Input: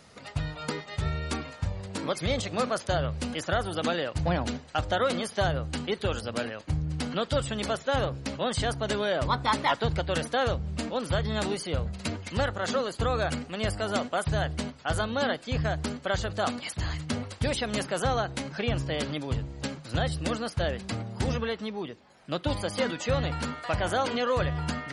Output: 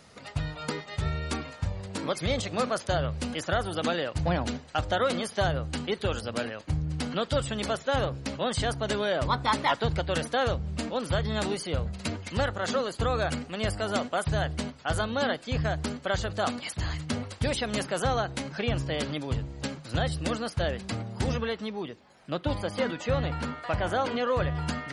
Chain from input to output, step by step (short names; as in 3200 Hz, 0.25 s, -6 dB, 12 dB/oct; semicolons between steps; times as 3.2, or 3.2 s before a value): 22.3–24.55 high shelf 4600 Hz -10 dB